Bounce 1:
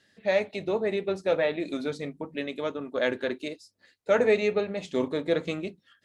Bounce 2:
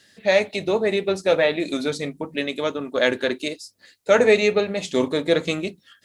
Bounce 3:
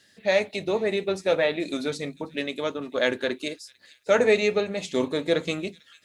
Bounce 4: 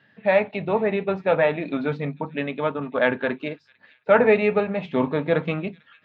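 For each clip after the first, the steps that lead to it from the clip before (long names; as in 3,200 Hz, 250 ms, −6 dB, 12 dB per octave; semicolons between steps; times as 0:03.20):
high-shelf EQ 3,800 Hz +10.5 dB; level +6 dB
delay with a high-pass on its return 447 ms, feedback 33%, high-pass 2,900 Hz, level −19 dB; level −4 dB
loudspeaker in its box 120–2,400 Hz, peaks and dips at 140 Hz +8 dB, 350 Hz −9 dB, 530 Hz −4 dB, 910 Hz +4 dB, 2,000 Hz −5 dB; level +6 dB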